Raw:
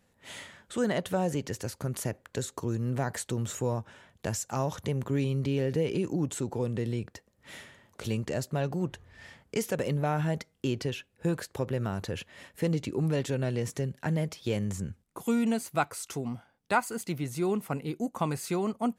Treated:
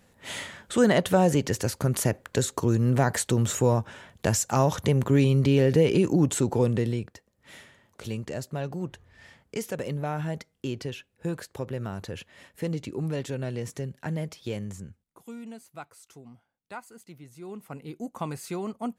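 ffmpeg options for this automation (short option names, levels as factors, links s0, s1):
-af "volume=8.91,afade=t=out:st=6.64:d=0.5:silence=0.316228,afade=t=out:st=14.43:d=0.8:silence=0.251189,afade=t=in:st=17.4:d=0.73:silence=0.281838"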